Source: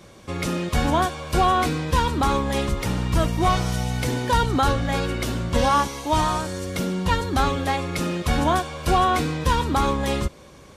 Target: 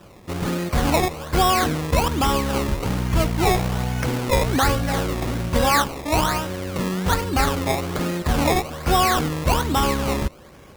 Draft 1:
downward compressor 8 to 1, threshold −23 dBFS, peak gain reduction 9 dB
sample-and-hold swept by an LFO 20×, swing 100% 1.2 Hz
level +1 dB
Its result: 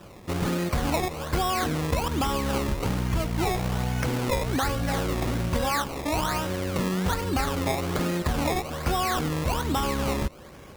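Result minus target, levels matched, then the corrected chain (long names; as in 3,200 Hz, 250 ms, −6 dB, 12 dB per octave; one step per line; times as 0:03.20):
downward compressor: peak gain reduction +9 dB
sample-and-hold swept by an LFO 20×, swing 100% 1.2 Hz
level +1 dB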